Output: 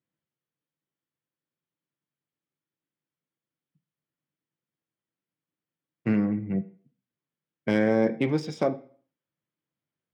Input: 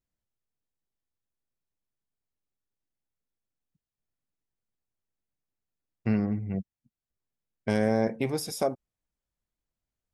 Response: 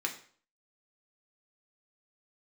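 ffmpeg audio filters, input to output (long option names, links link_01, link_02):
-filter_complex "[0:a]highpass=frequency=110:width=0.5412,highpass=frequency=110:width=1.3066,equalizer=frequency=150:width_type=q:width=4:gain=7,equalizer=frequency=320:width_type=q:width=4:gain=3,equalizer=frequency=770:width_type=q:width=4:gain=-5,equalizer=frequency=3200:width_type=q:width=4:gain=6,lowpass=frequency=8100:width=0.5412,lowpass=frequency=8100:width=1.3066,adynamicsmooth=sensitivity=4.5:basefreq=3900,asplit=2[link_01][link_02];[1:a]atrim=start_sample=2205,lowpass=3600[link_03];[link_02][link_03]afir=irnorm=-1:irlink=0,volume=-7dB[link_04];[link_01][link_04]amix=inputs=2:normalize=0"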